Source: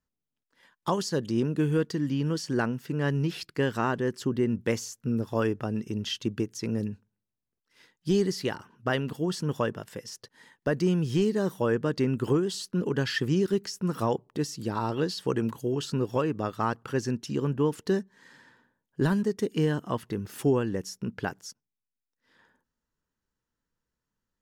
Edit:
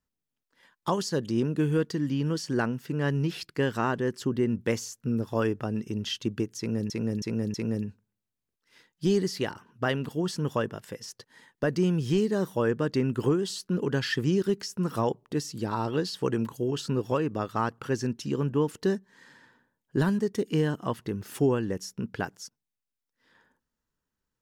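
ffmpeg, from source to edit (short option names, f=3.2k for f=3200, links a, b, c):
-filter_complex "[0:a]asplit=4[a][b][c][d];[a]atrim=end=6.902[e];[b]atrim=start=6.578:end=6.902[f];[c]atrim=start=6.578:end=6.902[g];[d]atrim=start=6.578[h];[e][f]acrossfade=d=0.004:c1=hsin:c2=hsin[i];[i][g]acrossfade=d=0.004:c1=hsin:c2=hsin[j];[j][h]acrossfade=d=0.004:c1=hsin:c2=hsin"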